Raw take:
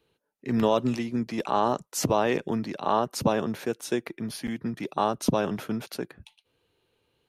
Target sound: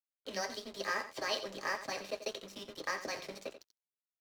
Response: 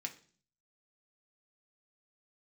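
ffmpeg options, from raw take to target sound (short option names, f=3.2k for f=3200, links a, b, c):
-filter_complex "[0:a]bandreject=f=920:w=5,bandreject=f=101.3:t=h:w=4,bandreject=f=202.6:t=h:w=4,bandreject=f=303.9:t=h:w=4,acrossover=split=910[a][b];[a]acompressor=threshold=-34dB:ratio=5[c];[c][b]amix=inputs=2:normalize=0,highpass=f=180:t=q:w=0.5412,highpass=f=180:t=q:w=1.307,lowpass=f=3.5k:t=q:w=0.5176,lowpass=f=3.5k:t=q:w=0.7071,lowpass=f=3.5k:t=q:w=1.932,afreqshift=-110,asplit=2[d][e];[e]acrusher=bits=5:mode=log:mix=0:aa=0.000001,volume=-8dB[f];[d][f]amix=inputs=2:normalize=0[g];[1:a]atrim=start_sample=2205,asetrate=57330,aresample=44100[h];[g][h]afir=irnorm=-1:irlink=0,aeval=exprs='sgn(val(0))*max(abs(val(0))-0.00355,0)':c=same,aecho=1:1:150:0.251,asetrate=76440,aresample=44100"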